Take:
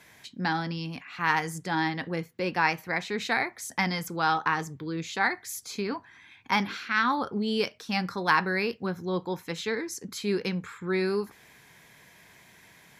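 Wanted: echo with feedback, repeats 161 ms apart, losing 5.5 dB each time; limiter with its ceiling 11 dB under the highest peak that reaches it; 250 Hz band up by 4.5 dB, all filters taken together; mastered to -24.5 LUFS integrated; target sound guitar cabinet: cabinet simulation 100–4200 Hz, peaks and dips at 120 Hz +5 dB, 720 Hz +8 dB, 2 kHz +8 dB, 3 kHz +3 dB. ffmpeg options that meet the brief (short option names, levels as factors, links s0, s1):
-af "equalizer=f=250:t=o:g=6.5,alimiter=limit=0.106:level=0:latency=1,highpass=100,equalizer=f=120:t=q:w=4:g=5,equalizer=f=720:t=q:w=4:g=8,equalizer=f=2000:t=q:w=4:g=8,equalizer=f=3000:t=q:w=4:g=3,lowpass=f=4200:w=0.5412,lowpass=f=4200:w=1.3066,aecho=1:1:161|322|483|644|805|966|1127:0.531|0.281|0.149|0.079|0.0419|0.0222|0.0118,volume=1.41"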